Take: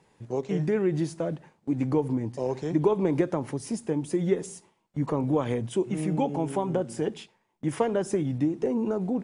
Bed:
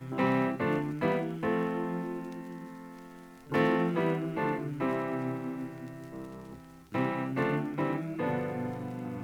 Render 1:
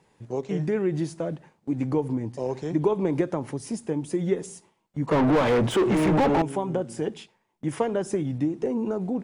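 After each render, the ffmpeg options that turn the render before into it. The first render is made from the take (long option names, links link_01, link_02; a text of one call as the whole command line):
ffmpeg -i in.wav -filter_complex "[0:a]asettb=1/sr,asplit=3[link_01][link_02][link_03];[link_01]atrim=end=5.114[link_04];[link_02]atrim=start=5.11:end=6.42,asetpts=PTS-STARTPTS,afade=type=in:duration=0.004:curve=qsin,afade=type=out:start_time=1.306:duration=0.004:curve=qsin,asplit=2[link_05][link_06];[link_06]highpass=frequency=720:poles=1,volume=34dB,asoftclip=type=tanh:threshold=-13dB[link_07];[link_05][link_07]amix=inputs=2:normalize=0,lowpass=frequency=1300:poles=1,volume=-6dB[link_08];[link_03]atrim=start=6.416[link_09];[link_04][link_08]acrossfade=duration=0.004:curve1=hsin:curve2=qsin[link_10];[link_10][link_09]acrossfade=duration=0.004:curve1=qsin:curve2=hsin" out.wav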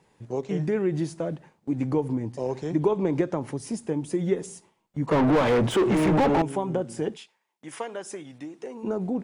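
ffmpeg -i in.wav -filter_complex "[0:a]asettb=1/sr,asplit=3[link_01][link_02][link_03];[link_01]atrim=end=2.874[link_04];[link_02]atrim=start=2.87:end=3.41,asetpts=PTS-STARTPTS,afade=type=in:duration=0.004:curve=qsin,afade=type=out:start_time=0.536:duration=0.004:curve=qsin,lowpass=frequency=8600:width=0.5412,lowpass=frequency=8600:width=1.3066[link_05];[link_03]atrim=start=3.406[link_06];[link_04][link_05]acrossfade=duration=0.004:curve1=hsin:curve2=qsin[link_07];[link_07][link_06]acrossfade=duration=0.004:curve1=qsin:curve2=hsin,asplit=3[link_08][link_09][link_10];[link_08]afade=type=out:start_time=7.15:duration=0.02[link_11];[link_09]highpass=frequency=1300:poles=1,afade=type=in:start_time=7.15:duration=0.02,afade=type=out:start_time=8.83:duration=0.02[link_12];[link_10]afade=type=in:start_time=8.83:duration=0.02[link_13];[link_11][link_12][link_13]amix=inputs=3:normalize=0" out.wav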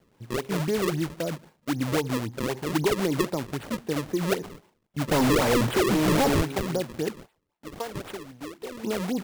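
ffmpeg -i in.wav -af "acrusher=samples=34:mix=1:aa=0.000001:lfo=1:lforange=54.4:lforate=3.8,asoftclip=type=tanh:threshold=-14dB" out.wav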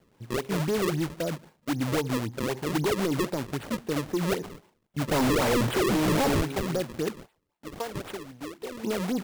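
ffmpeg -i in.wav -af "asoftclip=type=hard:threshold=-22dB" out.wav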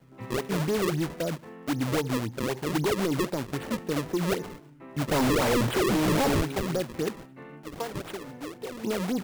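ffmpeg -i in.wav -i bed.wav -filter_complex "[1:a]volume=-16dB[link_01];[0:a][link_01]amix=inputs=2:normalize=0" out.wav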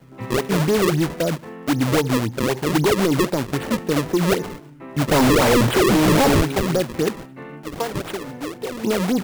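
ffmpeg -i in.wav -af "volume=8.5dB" out.wav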